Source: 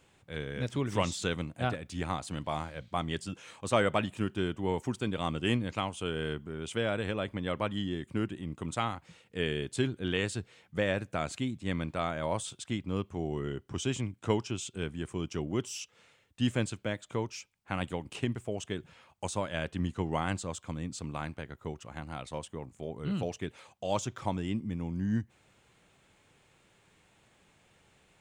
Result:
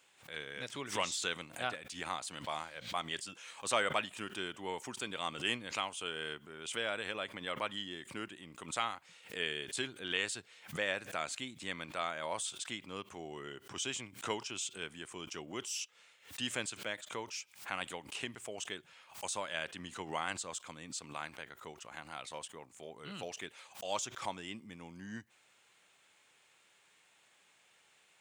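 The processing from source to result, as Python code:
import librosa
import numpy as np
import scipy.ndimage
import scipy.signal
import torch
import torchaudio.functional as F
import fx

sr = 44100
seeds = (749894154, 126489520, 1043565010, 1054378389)

y = fx.highpass(x, sr, hz=1500.0, slope=6)
y = fx.pre_swell(y, sr, db_per_s=140.0)
y = y * librosa.db_to_amplitude(1.5)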